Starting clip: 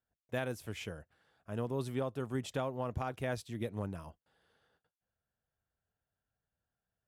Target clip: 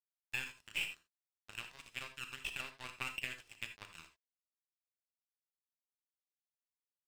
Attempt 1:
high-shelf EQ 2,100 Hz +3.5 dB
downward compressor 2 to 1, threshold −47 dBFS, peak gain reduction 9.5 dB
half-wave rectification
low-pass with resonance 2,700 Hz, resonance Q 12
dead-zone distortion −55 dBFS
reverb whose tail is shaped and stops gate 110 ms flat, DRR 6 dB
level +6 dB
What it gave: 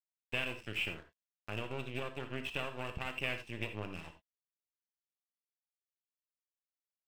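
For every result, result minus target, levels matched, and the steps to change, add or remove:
dead-zone distortion: distortion −10 dB; 1,000 Hz band +3.5 dB
change: dead-zone distortion −45.5 dBFS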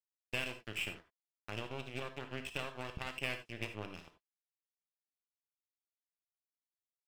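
1,000 Hz band +3.5 dB
add first: high-pass filter 1,000 Hz 24 dB per octave

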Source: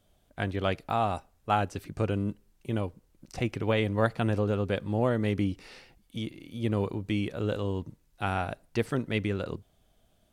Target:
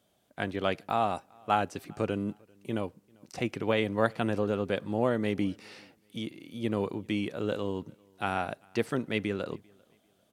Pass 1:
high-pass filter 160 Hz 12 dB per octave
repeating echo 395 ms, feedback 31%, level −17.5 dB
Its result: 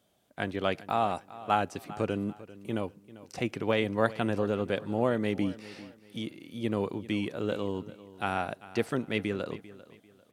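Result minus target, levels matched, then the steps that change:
echo-to-direct +11.5 dB
change: repeating echo 395 ms, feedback 31%, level −29 dB

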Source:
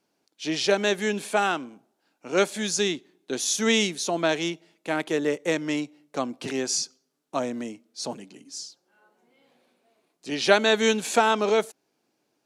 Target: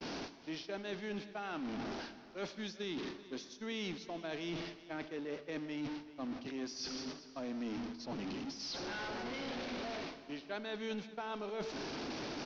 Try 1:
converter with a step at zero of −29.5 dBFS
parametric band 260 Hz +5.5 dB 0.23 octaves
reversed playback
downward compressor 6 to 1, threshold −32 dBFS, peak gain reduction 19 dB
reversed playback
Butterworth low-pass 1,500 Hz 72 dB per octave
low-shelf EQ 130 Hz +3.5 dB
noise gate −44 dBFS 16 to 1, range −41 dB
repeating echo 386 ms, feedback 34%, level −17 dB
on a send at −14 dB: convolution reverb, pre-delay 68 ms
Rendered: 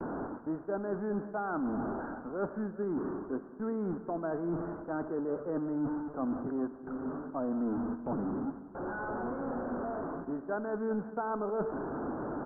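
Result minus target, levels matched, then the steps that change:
downward compressor: peak gain reduction −8 dB; 2,000 Hz band −7.0 dB
change: downward compressor 6 to 1, threshold −41.5 dBFS, peak gain reduction 27 dB
change: Butterworth low-pass 5,800 Hz 72 dB per octave

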